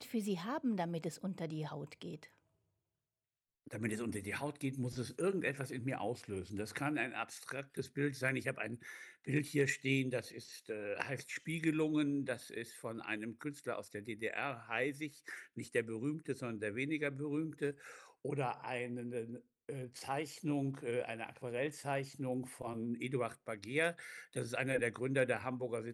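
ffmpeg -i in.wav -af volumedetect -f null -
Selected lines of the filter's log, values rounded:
mean_volume: -39.7 dB
max_volume: -20.3 dB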